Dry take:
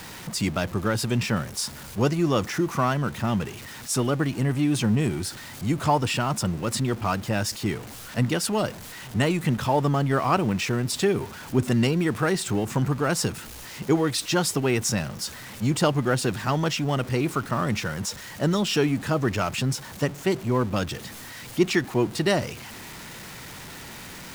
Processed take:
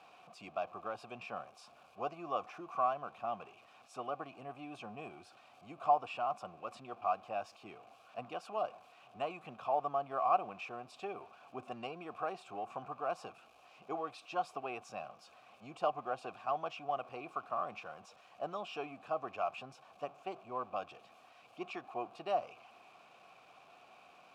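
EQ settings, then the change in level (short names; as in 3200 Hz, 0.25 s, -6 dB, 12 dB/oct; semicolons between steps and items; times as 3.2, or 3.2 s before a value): vowel filter a; dynamic EQ 960 Hz, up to +5 dB, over -48 dBFS, Q 1; -4.5 dB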